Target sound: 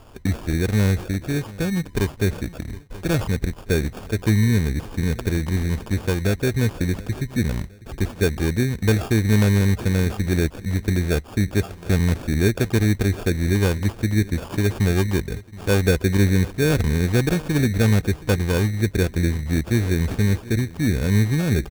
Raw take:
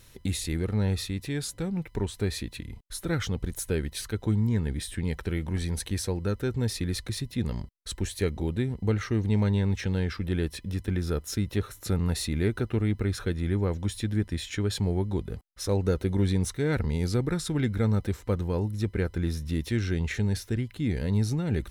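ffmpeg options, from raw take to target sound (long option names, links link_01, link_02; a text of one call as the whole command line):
ffmpeg -i in.wav -filter_complex "[0:a]asplit=2[link_01][link_02];[link_02]adelay=723,lowpass=frequency=1100:poles=1,volume=-20dB,asplit=2[link_03][link_04];[link_04]adelay=723,lowpass=frequency=1100:poles=1,volume=0.44,asplit=2[link_05][link_06];[link_06]adelay=723,lowpass=frequency=1100:poles=1,volume=0.44[link_07];[link_01][link_03][link_05][link_07]amix=inputs=4:normalize=0,acrossover=split=3400[link_08][link_09];[link_09]acompressor=threshold=-52dB:ratio=4:attack=1:release=60[link_10];[link_08][link_10]amix=inputs=2:normalize=0,acrusher=samples=22:mix=1:aa=0.000001,volume=7.5dB" out.wav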